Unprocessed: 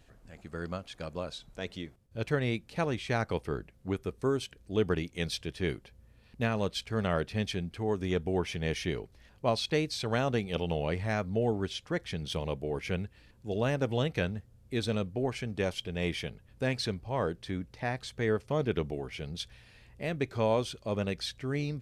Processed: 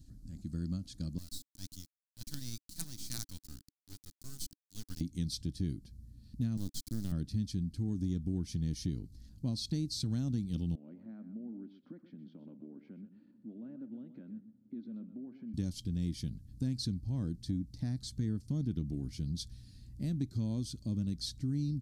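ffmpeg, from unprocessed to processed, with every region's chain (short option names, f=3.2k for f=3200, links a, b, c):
-filter_complex "[0:a]asettb=1/sr,asplit=3[a][b][c];[a]atrim=end=1.184[d];[b]atrim=start=1.18:end=5.01,asetpts=PTS-STARTPTS,afade=t=in:d=0.004:c=qsin,afade=t=out:st=3.826:d=0.004:c=qsin,highpass=1.1k,highshelf=f=7.7k:g=11.5,acrusher=bits=5:dc=4:mix=0:aa=0.000001[e];[c]atrim=start=5.006[f];[d][e]acrossfade=d=0.004:c1=hsin:c2=qsin[g];[g][f]acrossfade=d=0.004:c1=qsin:c2=hsin,asettb=1/sr,asplit=3[h][i][j];[h]atrim=end=6.574[k];[i]atrim=start=6.57:end=7.12,asetpts=PTS-STARTPTS,afade=t=in:d=0.004:c=qsin,afade=t=out:st=0.546:d=0.004:c=qsin,highpass=f=220:p=1,acrusher=bits=4:dc=4:mix=0:aa=0.000001[l];[j]atrim=start=7.116[m];[k][l]acrossfade=d=0.004:c1=hsin:c2=qsin[n];[n][m]acrossfade=d=0.004:c1=qsin:c2=hsin,asettb=1/sr,asplit=3[o][p][q];[o]atrim=end=10.754[r];[p]atrim=start=10.75:end=15.54,asetpts=PTS-STARTPTS,afade=t=in:d=0.004:c=qsin,afade=t=out:st=4.786:d=0.004:c=qsin,acompressor=threshold=-45dB:ratio=6:attack=3.2:release=140:knee=1:detection=peak,highpass=f=230:w=0.5412,highpass=f=230:w=1.3066,equalizer=f=230:t=q:w=4:g=7,equalizer=f=380:t=q:w=4:g=3,equalizer=f=570:t=q:w=4:g=9,equalizer=f=910:t=q:w=4:g=4,equalizer=f=1.4k:t=q:w=4:g=6,equalizer=f=1.9k:t=q:w=4:g=-3,lowpass=f=2.2k:w=0.5412,lowpass=f=2.2k:w=1.3066,aecho=1:1:126:0.266,atrim=end_sample=211239[s];[q]atrim=start=15.536[t];[r][s]acrossfade=d=0.004:c1=hsin:c2=qsin[u];[u][t]acrossfade=d=0.004:c1=qsin:c2=hsin,firequalizer=gain_entry='entry(290,0);entry(420,-24);entry(1000,-28);entry(1500,-25);entry(2500,-27);entry(4300,-5)':delay=0.05:min_phase=1,acompressor=threshold=-39dB:ratio=3,volume=6.5dB"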